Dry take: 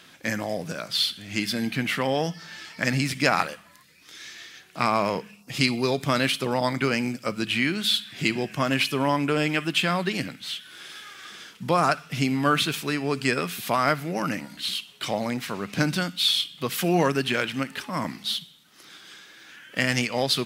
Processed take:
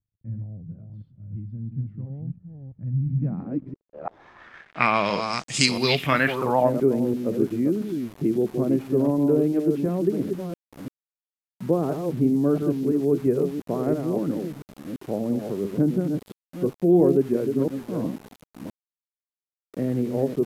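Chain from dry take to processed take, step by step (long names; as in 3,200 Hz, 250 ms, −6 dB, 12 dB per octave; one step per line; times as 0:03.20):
delay that plays each chunk backwards 340 ms, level −6 dB
low-pass filter sweep 9,000 Hz → 400 Hz, 0:05.53–0:06.87
centre clipping without the shift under −40.5 dBFS
low-pass filter sweep 110 Hz → 13,000 Hz, 0:02.98–0:05.85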